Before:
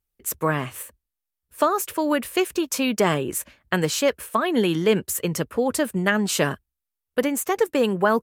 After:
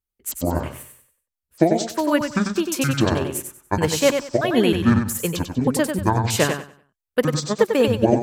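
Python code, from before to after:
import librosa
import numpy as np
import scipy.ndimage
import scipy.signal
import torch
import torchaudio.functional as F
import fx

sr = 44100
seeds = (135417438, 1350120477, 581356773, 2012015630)

y = fx.pitch_trill(x, sr, semitones=-10.5, every_ms=315)
y = fx.echo_feedback(y, sr, ms=95, feedback_pct=34, wet_db=-4.5)
y = fx.upward_expand(y, sr, threshold_db=-37.0, expansion=1.5)
y = F.gain(torch.from_numpy(y), 4.0).numpy()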